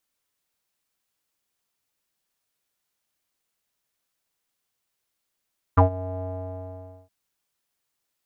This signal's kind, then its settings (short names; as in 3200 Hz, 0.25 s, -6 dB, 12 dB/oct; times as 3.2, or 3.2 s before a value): synth note square F#2 12 dB/oct, low-pass 700 Hz, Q 7.9, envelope 1 oct, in 0.05 s, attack 13 ms, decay 0.11 s, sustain -19 dB, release 0.86 s, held 0.46 s